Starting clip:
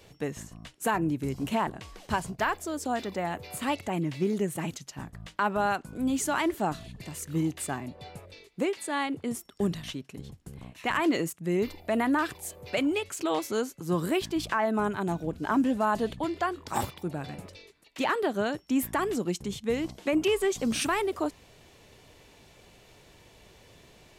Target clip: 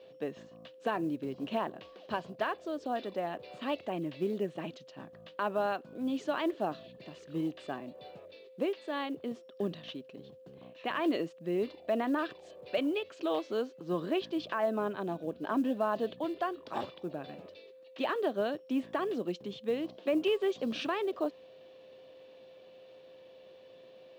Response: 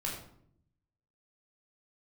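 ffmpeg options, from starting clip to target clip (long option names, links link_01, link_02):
-af "aeval=exprs='val(0)+0.00316*sin(2*PI*520*n/s)':channel_layout=same,highpass=250,equalizer=frequency=610:width_type=q:width=4:gain=4,equalizer=frequency=880:width_type=q:width=4:gain=-6,equalizer=frequency=1400:width_type=q:width=4:gain=-5,equalizer=frequency=2100:width_type=q:width=4:gain=-9,lowpass=frequency=3900:width=0.5412,lowpass=frequency=3900:width=1.3066,acrusher=bits=9:mode=log:mix=0:aa=0.000001,volume=-3dB"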